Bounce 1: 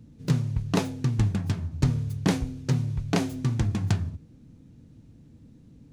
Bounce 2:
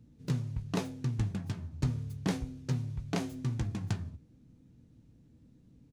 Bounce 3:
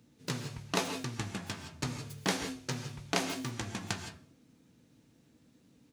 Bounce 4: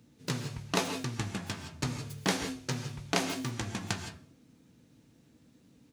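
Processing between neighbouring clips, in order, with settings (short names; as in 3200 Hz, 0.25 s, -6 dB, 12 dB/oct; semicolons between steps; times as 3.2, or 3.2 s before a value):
doubler 16 ms -12 dB; gain -8.5 dB
HPF 910 Hz 6 dB/oct; on a send at -7 dB: reverb, pre-delay 3 ms; on the sum: gain +9 dB
low shelf 190 Hz +2.5 dB; gain +1.5 dB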